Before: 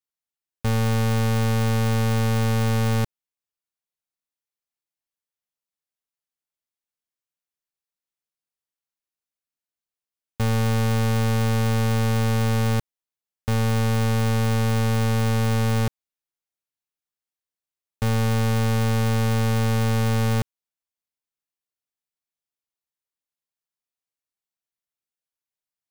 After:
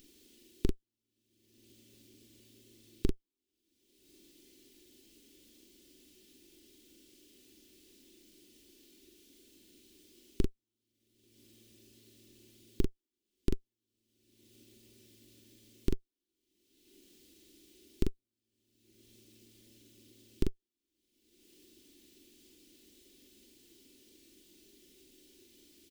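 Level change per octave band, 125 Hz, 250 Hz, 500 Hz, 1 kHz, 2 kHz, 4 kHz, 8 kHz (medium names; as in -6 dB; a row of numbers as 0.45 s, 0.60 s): -27.0 dB, -18.5 dB, -18.5 dB, -37.0 dB, -31.0 dB, -22.0 dB, -21.5 dB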